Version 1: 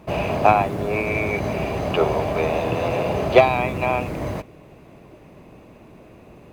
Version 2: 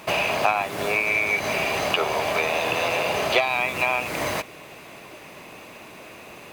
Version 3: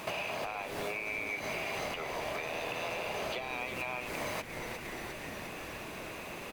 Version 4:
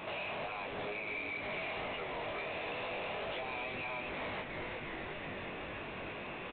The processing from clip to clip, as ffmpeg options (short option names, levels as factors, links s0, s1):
-af "tiltshelf=f=850:g=-9.5,acompressor=threshold=0.0355:ratio=3,lowshelf=f=91:g=-10.5,volume=2.24"
-filter_complex "[0:a]alimiter=limit=0.158:level=0:latency=1:release=473,asplit=9[s0][s1][s2][s3][s4][s5][s6][s7][s8];[s1]adelay=355,afreqshift=-130,volume=0.316[s9];[s2]adelay=710,afreqshift=-260,volume=0.2[s10];[s3]adelay=1065,afreqshift=-390,volume=0.126[s11];[s4]adelay=1420,afreqshift=-520,volume=0.0794[s12];[s5]adelay=1775,afreqshift=-650,volume=0.0495[s13];[s6]adelay=2130,afreqshift=-780,volume=0.0313[s14];[s7]adelay=2485,afreqshift=-910,volume=0.0197[s15];[s8]adelay=2840,afreqshift=-1040,volume=0.0124[s16];[s0][s9][s10][s11][s12][s13][s14][s15][s16]amix=inputs=9:normalize=0,acompressor=threshold=0.0112:ratio=2.5"
-af "flanger=delay=19.5:depth=2.1:speed=2.1,aresample=8000,asoftclip=type=tanh:threshold=0.0112,aresample=44100,aecho=1:1:254:0.316,volume=1.5"